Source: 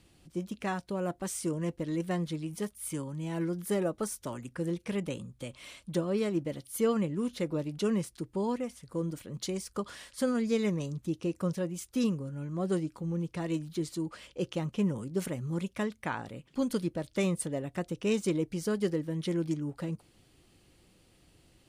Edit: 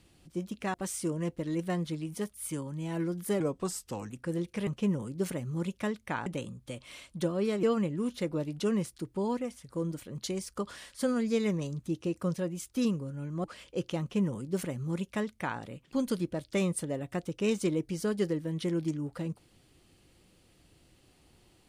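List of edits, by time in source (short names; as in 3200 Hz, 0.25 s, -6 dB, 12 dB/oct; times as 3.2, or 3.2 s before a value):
0.74–1.15 cut
3.81–4.42 speed 87%
6.36–6.82 cut
12.63–14.07 cut
14.63–16.22 copy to 4.99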